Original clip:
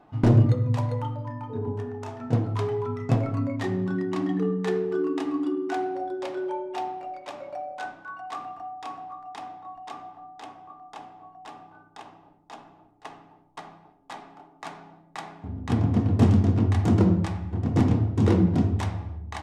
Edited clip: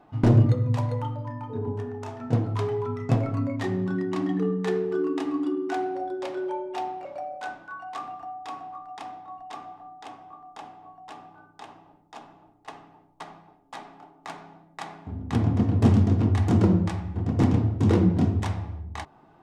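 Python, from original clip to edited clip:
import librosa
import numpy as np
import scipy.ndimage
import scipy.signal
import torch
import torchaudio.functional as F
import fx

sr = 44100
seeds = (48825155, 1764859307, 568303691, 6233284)

y = fx.edit(x, sr, fx.cut(start_s=7.05, length_s=0.37), tone=tone)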